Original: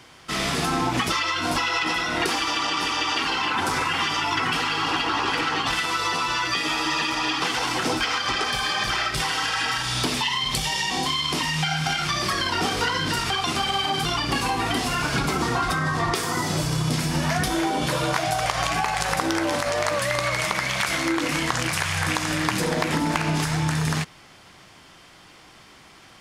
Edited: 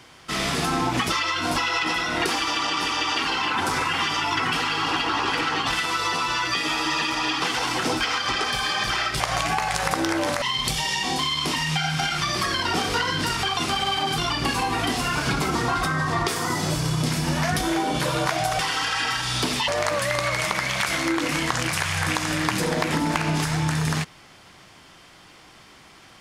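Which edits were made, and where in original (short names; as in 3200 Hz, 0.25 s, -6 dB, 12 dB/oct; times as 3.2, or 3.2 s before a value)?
9.2–10.29 swap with 18.46–19.68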